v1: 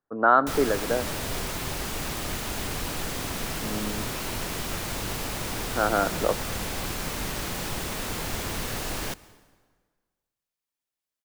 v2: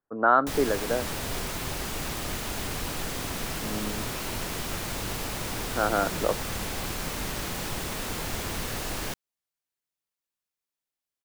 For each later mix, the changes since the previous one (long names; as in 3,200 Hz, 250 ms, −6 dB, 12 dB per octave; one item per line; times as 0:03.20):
speech: add high-frequency loss of the air 64 metres
reverb: off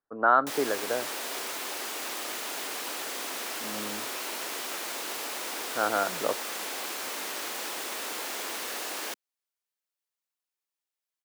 background: add high-pass filter 280 Hz 24 dB per octave
master: add low-shelf EQ 350 Hz −8.5 dB